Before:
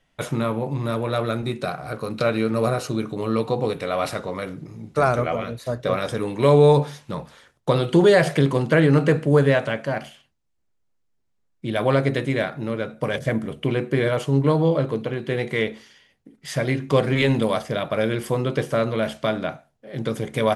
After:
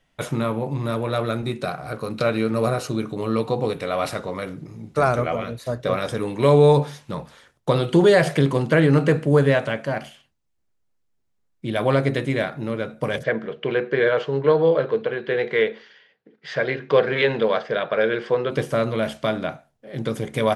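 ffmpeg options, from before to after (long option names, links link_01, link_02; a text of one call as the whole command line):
ffmpeg -i in.wav -filter_complex "[0:a]asplit=3[link_01][link_02][link_03];[link_01]afade=type=out:start_time=13.22:duration=0.02[link_04];[link_02]highpass=220,equalizer=frequency=270:width_type=q:width=4:gain=-9,equalizer=frequency=460:width_type=q:width=4:gain=7,equalizer=frequency=1600:width_type=q:width=4:gain=8,lowpass=frequency=4500:width=0.5412,lowpass=frequency=4500:width=1.3066,afade=type=in:start_time=13.22:duration=0.02,afade=type=out:start_time=18.5:duration=0.02[link_05];[link_03]afade=type=in:start_time=18.5:duration=0.02[link_06];[link_04][link_05][link_06]amix=inputs=3:normalize=0" out.wav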